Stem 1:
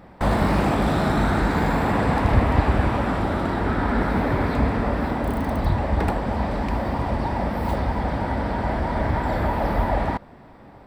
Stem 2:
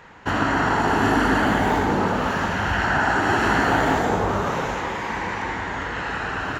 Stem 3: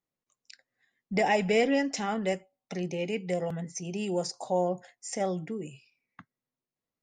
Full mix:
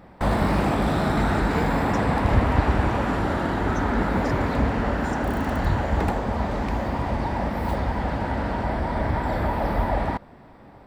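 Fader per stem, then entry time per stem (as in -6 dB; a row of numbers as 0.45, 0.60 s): -1.5, -14.0, -10.5 dB; 0.00, 2.05, 0.00 s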